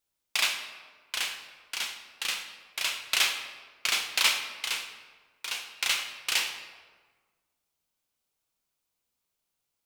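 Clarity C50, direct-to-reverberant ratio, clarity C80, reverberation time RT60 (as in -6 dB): 7.0 dB, 4.5 dB, 9.0 dB, 1.5 s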